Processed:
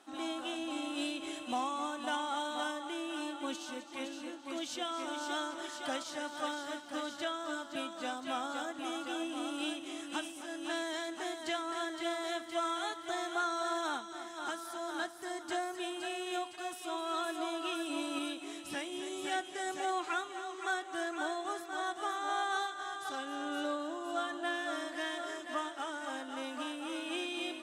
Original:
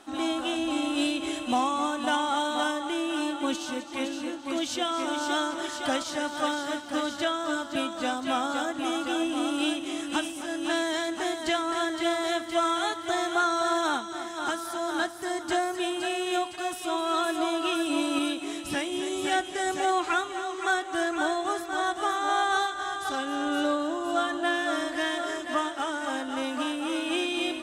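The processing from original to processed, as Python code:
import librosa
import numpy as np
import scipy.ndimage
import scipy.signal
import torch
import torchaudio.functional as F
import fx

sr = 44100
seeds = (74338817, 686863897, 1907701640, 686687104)

y = fx.highpass(x, sr, hz=240.0, slope=6)
y = F.gain(torch.from_numpy(y), -8.5).numpy()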